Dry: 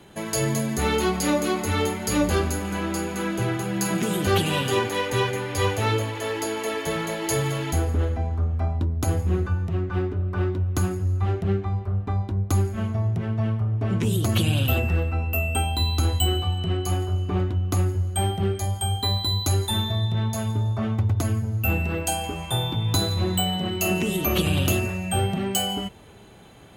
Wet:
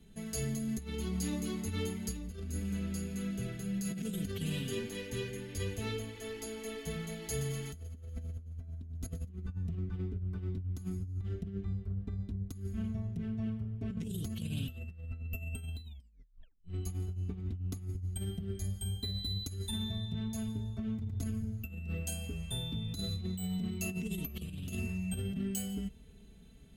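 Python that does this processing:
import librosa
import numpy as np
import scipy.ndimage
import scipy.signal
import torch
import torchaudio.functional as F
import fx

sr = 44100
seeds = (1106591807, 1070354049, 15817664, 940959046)

y = fx.echo_thinned(x, sr, ms=123, feedback_pct=73, hz=420.0, wet_db=-9.5, at=(7.19, 9.29))
y = fx.edit(y, sr, fx.tape_stop(start_s=15.84, length_s=0.76), tone=tone)
y = fx.tone_stack(y, sr, knobs='10-0-1')
y = y + 0.72 * np.pad(y, (int(4.5 * sr / 1000.0), 0))[:len(y)]
y = fx.over_compress(y, sr, threshold_db=-40.0, ratio=-0.5)
y = y * 10.0 ** (3.0 / 20.0)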